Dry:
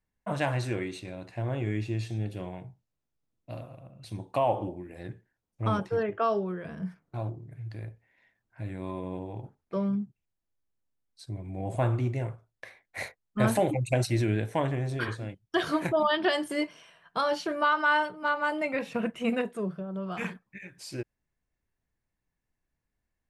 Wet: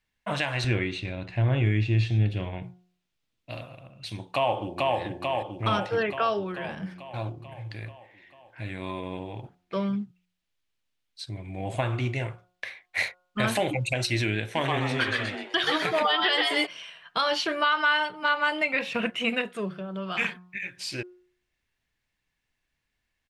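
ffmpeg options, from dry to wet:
-filter_complex "[0:a]asettb=1/sr,asplit=3[a][b][c];[a]atrim=end=0.644[d];[b]atrim=start=0.64:end=2.63,asetpts=PTS-STARTPTS,afade=t=in:d=0.004:c=qsin,afade=t=out:st=1.986:d=0.004:c=qsin,aemphasis=mode=reproduction:type=bsi[e];[c]atrim=start=2.626[f];[d][e]acrossfade=d=0.004:c1=hsin:c2=qsin[g];[g][f]acrossfade=d=0.004:c1=qsin:c2=hsin,asplit=2[h][i];[i]afade=t=in:st=4.32:d=0.01,afade=t=out:st=4.98:d=0.01,aecho=0:1:440|880|1320|1760|2200|2640|3080|3520|3960|4400|4840:0.794328|0.516313|0.335604|0.218142|0.141793|0.0921652|0.0599074|0.0389398|0.0253109|0.0164521|0.0106938[j];[h][j]amix=inputs=2:normalize=0,asplit=3[k][l][m];[k]afade=t=out:st=14.55:d=0.02[n];[l]asplit=5[o][p][q][r][s];[p]adelay=127,afreqshift=130,volume=-3.5dB[t];[q]adelay=254,afreqshift=260,volume=-13.4dB[u];[r]adelay=381,afreqshift=390,volume=-23.3dB[v];[s]adelay=508,afreqshift=520,volume=-33.2dB[w];[o][t][u][v][w]amix=inputs=5:normalize=0,afade=t=in:st=14.55:d=0.02,afade=t=out:st=16.65:d=0.02[x];[m]afade=t=in:st=16.65:d=0.02[y];[n][x][y]amix=inputs=3:normalize=0,equalizer=f=3k:t=o:w=2.1:g=14.5,bandreject=f=180.1:t=h:w=4,bandreject=f=360.2:t=h:w=4,bandreject=f=540.3:t=h:w=4,bandreject=f=720.4:t=h:w=4,bandreject=f=900.5:t=h:w=4,bandreject=f=1.0806k:t=h:w=4,bandreject=f=1.2607k:t=h:w=4,bandreject=f=1.4408k:t=h:w=4,alimiter=limit=-14dB:level=0:latency=1:release=215"

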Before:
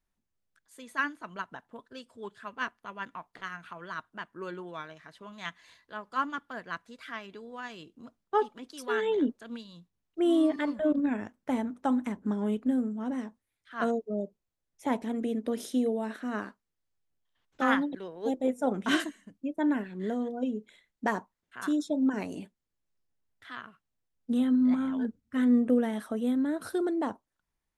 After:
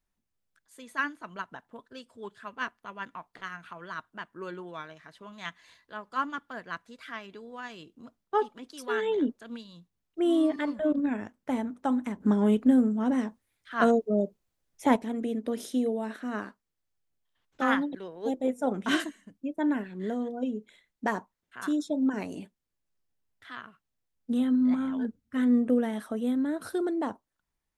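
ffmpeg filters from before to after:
-filter_complex "[0:a]asettb=1/sr,asplit=3[a][b][c];[a]atrim=end=12.204[d];[b]atrim=start=12.2:end=14.96,asetpts=PTS-STARTPTS,afade=t=in:d=0.004:c=qsin,afade=t=out:st=2.756:d=0.004:c=qsin,acontrast=70[e];[c]atrim=start=14.956[f];[d][e]acrossfade=d=0.004:c1=hsin:c2=qsin[g];[g][f]acrossfade=d=0.004:c1=qsin:c2=hsin"

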